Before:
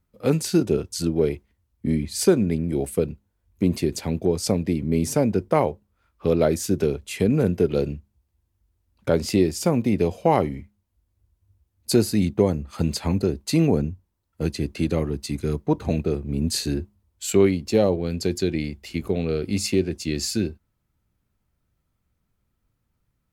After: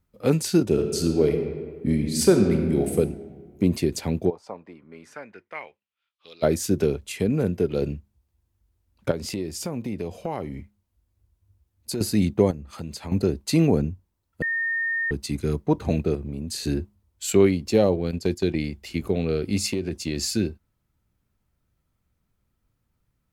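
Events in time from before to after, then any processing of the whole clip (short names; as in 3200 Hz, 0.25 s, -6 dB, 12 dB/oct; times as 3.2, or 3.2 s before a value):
0.66–2.96 reverb throw, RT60 1.7 s, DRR 4 dB
4.29–6.42 band-pass 800 Hz -> 4200 Hz, Q 3.2
7.12–7.82 gain -3 dB
9.11–12.01 compressor 2.5:1, threshold -30 dBFS
12.51–13.12 compressor 2:1, threshold -39 dBFS
14.42–15.11 bleep 1830 Hz -22.5 dBFS
16.15–16.66 compressor 10:1, threshold -27 dBFS
18.11–18.58 gate -29 dBFS, range -9 dB
19.71–20.28 compressor, threshold -21 dBFS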